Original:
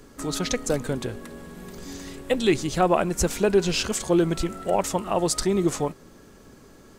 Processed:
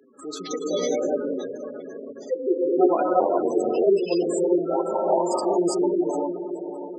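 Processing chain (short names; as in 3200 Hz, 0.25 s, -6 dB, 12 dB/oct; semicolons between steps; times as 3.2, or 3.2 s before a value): 2–2.59 sine-wave speech; flange 0.63 Hz, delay 7.5 ms, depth 4.6 ms, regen -20%; non-linear reverb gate 0.43 s rising, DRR -5.5 dB; 3.19–3.84 ring modulator 45 Hz; diffused feedback echo 0.563 s, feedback 46%, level -9 dB; spectral gate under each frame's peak -15 dB strong; HPF 260 Hz 24 dB/oct; 0.71–1.34 doubler 17 ms -3 dB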